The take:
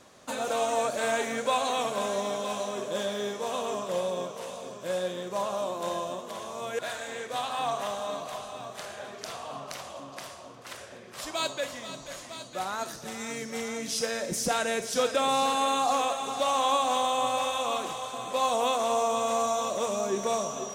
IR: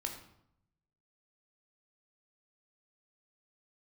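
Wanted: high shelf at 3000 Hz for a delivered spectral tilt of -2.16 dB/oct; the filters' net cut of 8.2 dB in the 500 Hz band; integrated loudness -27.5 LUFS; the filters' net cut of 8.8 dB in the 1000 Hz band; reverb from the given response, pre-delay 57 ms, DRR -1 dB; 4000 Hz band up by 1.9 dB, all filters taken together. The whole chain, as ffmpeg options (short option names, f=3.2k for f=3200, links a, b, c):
-filter_complex "[0:a]equalizer=f=500:t=o:g=-7,equalizer=f=1k:t=o:g=-8.5,highshelf=f=3k:g=-8,equalizer=f=4k:t=o:g=8.5,asplit=2[a][b];[1:a]atrim=start_sample=2205,adelay=57[c];[b][c]afir=irnorm=-1:irlink=0,volume=0.5dB[d];[a][d]amix=inputs=2:normalize=0,volume=4dB"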